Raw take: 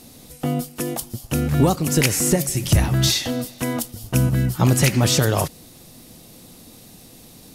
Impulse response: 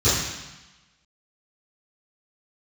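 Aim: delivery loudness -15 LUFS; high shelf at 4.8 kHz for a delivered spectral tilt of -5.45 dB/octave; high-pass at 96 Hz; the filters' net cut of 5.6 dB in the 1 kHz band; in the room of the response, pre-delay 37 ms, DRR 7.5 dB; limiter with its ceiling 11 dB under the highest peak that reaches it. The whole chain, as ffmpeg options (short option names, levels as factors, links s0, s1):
-filter_complex "[0:a]highpass=96,equalizer=f=1000:t=o:g=-8,highshelf=f=4800:g=-5,alimiter=limit=0.15:level=0:latency=1,asplit=2[s0][s1];[1:a]atrim=start_sample=2205,adelay=37[s2];[s1][s2]afir=irnorm=-1:irlink=0,volume=0.0501[s3];[s0][s3]amix=inputs=2:normalize=0,volume=2.37"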